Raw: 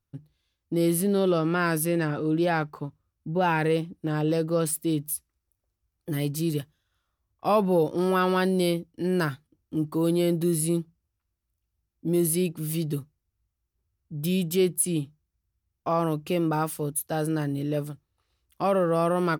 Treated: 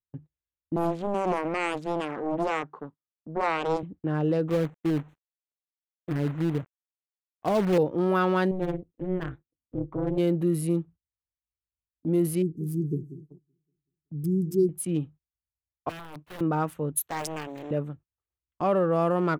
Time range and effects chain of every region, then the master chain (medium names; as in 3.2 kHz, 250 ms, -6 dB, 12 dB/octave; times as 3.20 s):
0.76–3.83 s: cabinet simulation 250–7000 Hz, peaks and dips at 610 Hz -5 dB, 2.4 kHz -7 dB, 5.1 kHz +8 dB + loudspeaker Doppler distortion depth 0.9 ms
4.48–7.78 s: low-pass that closes with the level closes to 670 Hz, closed at -22.5 dBFS + companded quantiser 4-bit
8.51–10.18 s: self-modulated delay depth 0.32 ms + treble shelf 2.4 kHz -10.5 dB + AM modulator 190 Hz, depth 80%
12.42–14.69 s: brick-wall FIR band-stop 470–4600 Hz + modulated delay 189 ms, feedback 54%, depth 112 cents, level -14 dB
15.89–16.41 s: tilt EQ +3 dB/octave + compression 20:1, threshold -29 dBFS + integer overflow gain 31.5 dB
16.97–17.71 s: tilt EQ +4 dB/octave + loudspeaker Doppler distortion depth 0.85 ms
whole clip: local Wiener filter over 9 samples; treble shelf 5.2 kHz -11.5 dB; gate -45 dBFS, range -21 dB